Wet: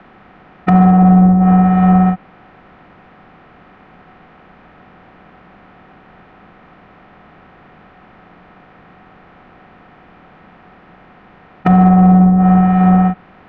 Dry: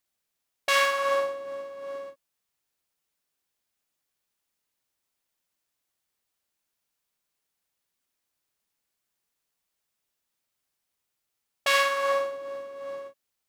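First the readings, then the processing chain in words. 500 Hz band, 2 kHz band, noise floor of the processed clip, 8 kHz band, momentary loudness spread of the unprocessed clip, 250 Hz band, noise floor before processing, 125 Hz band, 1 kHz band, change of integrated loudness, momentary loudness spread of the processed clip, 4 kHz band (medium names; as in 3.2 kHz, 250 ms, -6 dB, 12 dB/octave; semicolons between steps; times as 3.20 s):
+3.5 dB, -2.0 dB, -45 dBFS, under -25 dB, 16 LU, +48.0 dB, -82 dBFS, no reading, +15.5 dB, +15.5 dB, 9 LU, under -10 dB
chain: spectral levelling over time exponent 0.6; low-pass that closes with the level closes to 700 Hz, closed at -24 dBFS; Bessel low-pass 1.4 kHz, order 4; frequency shift -370 Hz; in parallel at -7 dB: saturation -34 dBFS, distortion -9 dB; on the sum: loudness maximiser +22 dB; trim -1 dB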